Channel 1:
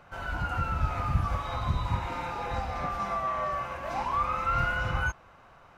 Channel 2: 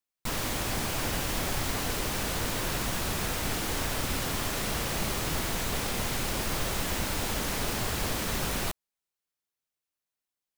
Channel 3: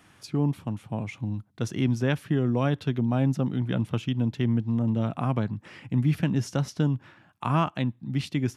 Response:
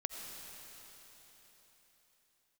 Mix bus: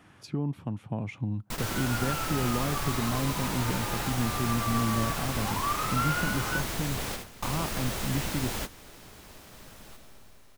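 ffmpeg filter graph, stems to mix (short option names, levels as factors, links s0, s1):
-filter_complex "[0:a]highpass=f=810:w=0.5412,highpass=f=810:w=1.3066,adelay=1500,volume=0.794[s0];[1:a]adelay=1250,volume=0.668,asplit=2[s1][s2];[s2]volume=0.15[s3];[2:a]highshelf=f=2800:g=-8,acompressor=threshold=0.0398:ratio=2.5,alimiter=limit=0.0708:level=0:latency=1:release=370,volume=1.26,asplit=2[s4][s5];[s5]apad=whole_len=521602[s6];[s1][s6]sidechaingate=range=0.0224:threshold=0.00251:ratio=16:detection=peak[s7];[3:a]atrim=start_sample=2205[s8];[s3][s8]afir=irnorm=-1:irlink=0[s9];[s0][s7][s4][s9]amix=inputs=4:normalize=0"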